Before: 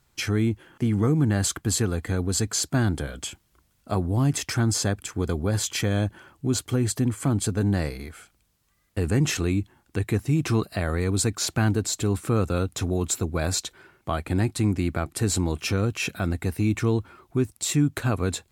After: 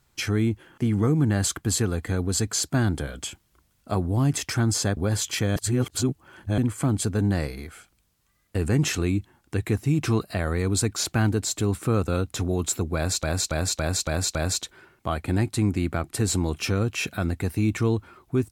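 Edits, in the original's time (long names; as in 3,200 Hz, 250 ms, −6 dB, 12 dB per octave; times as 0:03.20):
0:04.97–0:05.39: remove
0:05.98–0:07.00: reverse
0:13.37–0:13.65: repeat, 6 plays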